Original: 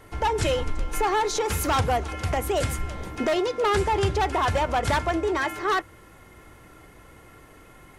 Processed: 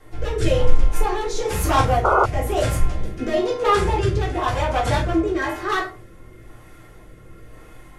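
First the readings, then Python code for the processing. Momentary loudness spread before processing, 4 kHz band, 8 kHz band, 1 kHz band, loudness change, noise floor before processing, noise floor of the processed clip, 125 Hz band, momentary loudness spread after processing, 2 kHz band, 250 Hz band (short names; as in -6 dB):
5 LU, +0.5 dB, 0.0 dB, +2.5 dB, +3.5 dB, -51 dBFS, -45 dBFS, +5.5 dB, 7 LU, +2.0 dB, +5.0 dB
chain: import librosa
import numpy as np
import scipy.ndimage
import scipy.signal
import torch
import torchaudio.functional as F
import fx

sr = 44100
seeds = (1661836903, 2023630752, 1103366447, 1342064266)

y = fx.room_shoebox(x, sr, seeds[0], volume_m3=220.0, walls='furnished', distance_m=3.7)
y = fx.rotary(y, sr, hz=1.0)
y = fx.spec_paint(y, sr, seeds[1], shape='noise', start_s=2.04, length_s=0.22, low_hz=350.0, high_hz=1500.0, level_db=-13.0)
y = y * 10.0 ** (-3.0 / 20.0)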